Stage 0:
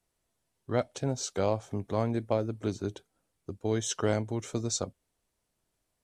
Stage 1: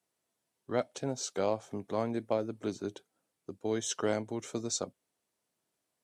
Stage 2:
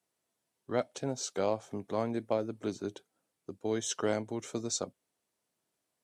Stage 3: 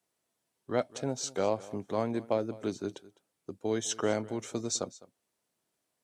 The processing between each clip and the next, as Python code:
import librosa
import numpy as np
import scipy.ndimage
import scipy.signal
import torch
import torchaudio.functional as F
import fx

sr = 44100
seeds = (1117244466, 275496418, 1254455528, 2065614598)

y1 = scipy.signal.sosfilt(scipy.signal.butter(2, 180.0, 'highpass', fs=sr, output='sos'), x)
y1 = F.gain(torch.from_numpy(y1), -2.0).numpy()
y2 = y1
y3 = y2 + 10.0 ** (-20.0 / 20.0) * np.pad(y2, (int(206 * sr / 1000.0), 0))[:len(y2)]
y3 = F.gain(torch.from_numpy(y3), 1.5).numpy()